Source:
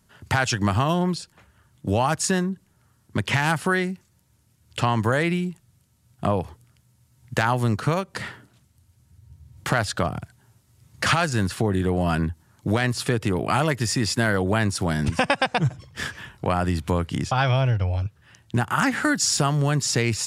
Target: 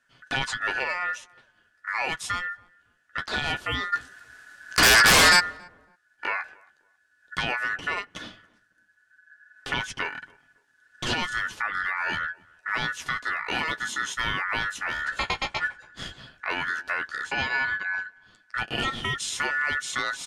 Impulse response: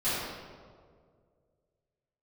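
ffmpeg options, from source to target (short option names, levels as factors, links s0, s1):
-filter_complex "[0:a]lowpass=6400,aeval=exprs='val(0)*sin(2*PI*1600*n/s)':c=same,flanger=delay=7.3:depth=9.1:regen=-28:speed=0.1:shape=sinusoidal,asplit=3[s0][s1][s2];[s0]afade=t=out:st=3.92:d=0.02[s3];[s1]aeval=exprs='0.237*sin(PI/2*7.08*val(0)/0.237)':c=same,afade=t=in:st=3.92:d=0.02,afade=t=out:st=5.39:d=0.02[s4];[s2]afade=t=in:st=5.39:d=0.02[s5];[s3][s4][s5]amix=inputs=3:normalize=0,asplit=2[s6][s7];[s7]adelay=278,lowpass=f=890:p=1,volume=0.0794,asplit=2[s8][s9];[s9]adelay=278,lowpass=f=890:p=1,volume=0.3[s10];[s8][s10]amix=inputs=2:normalize=0[s11];[s6][s11]amix=inputs=2:normalize=0"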